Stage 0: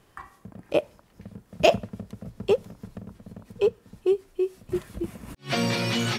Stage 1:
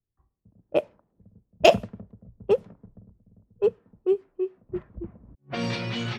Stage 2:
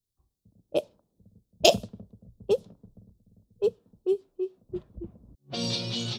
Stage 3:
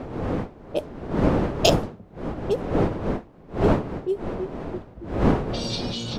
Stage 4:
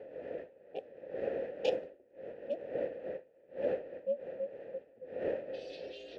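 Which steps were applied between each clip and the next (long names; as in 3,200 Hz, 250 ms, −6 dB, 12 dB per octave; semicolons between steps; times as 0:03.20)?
low-pass that shuts in the quiet parts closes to 380 Hz, open at −17.5 dBFS; multiband upward and downward expander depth 70%; level −3.5 dB
drawn EQ curve 550 Hz 0 dB, 2,000 Hz −12 dB, 3,700 Hz +11 dB; level −3 dB
wind on the microphone 440 Hz −26 dBFS
ring modulation 170 Hz; formant filter e; level −1 dB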